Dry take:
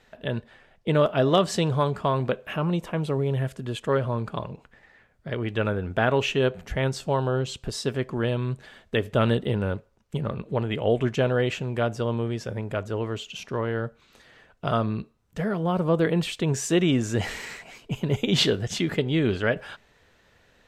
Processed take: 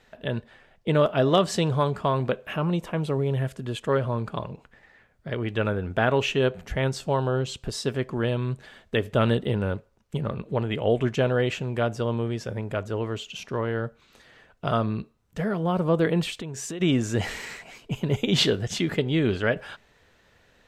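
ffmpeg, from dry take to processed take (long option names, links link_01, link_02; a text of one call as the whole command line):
ffmpeg -i in.wav -filter_complex "[0:a]asplit=3[link_01][link_02][link_03];[link_01]afade=type=out:start_time=16.3:duration=0.02[link_04];[link_02]acompressor=threshold=-30dB:ratio=16:attack=3.2:release=140:knee=1:detection=peak,afade=type=in:start_time=16.3:duration=0.02,afade=type=out:start_time=16.8:duration=0.02[link_05];[link_03]afade=type=in:start_time=16.8:duration=0.02[link_06];[link_04][link_05][link_06]amix=inputs=3:normalize=0" out.wav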